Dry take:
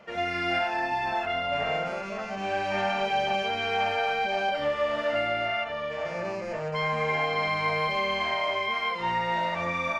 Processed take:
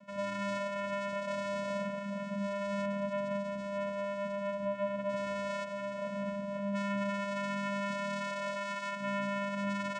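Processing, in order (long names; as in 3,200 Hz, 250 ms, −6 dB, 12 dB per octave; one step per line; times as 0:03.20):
0:02.85–0:05.09: parametric band 4,900 Hz −15 dB 2.7 octaves
brickwall limiter −20.5 dBFS, peak gain reduction 5.5 dB
channel vocoder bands 4, square 200 Hz
level −5 dB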